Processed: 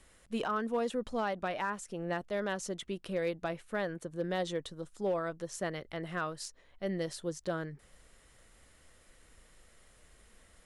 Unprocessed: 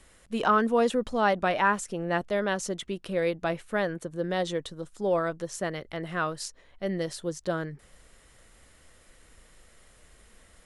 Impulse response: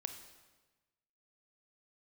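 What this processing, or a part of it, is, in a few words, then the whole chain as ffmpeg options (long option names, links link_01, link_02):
limiter into clipper: -af "alimiter=limit=-19dB:level=0:latency=1:release=448,asoftclip=type=hard:threshold=-20.5dB,volume=-4.5dB"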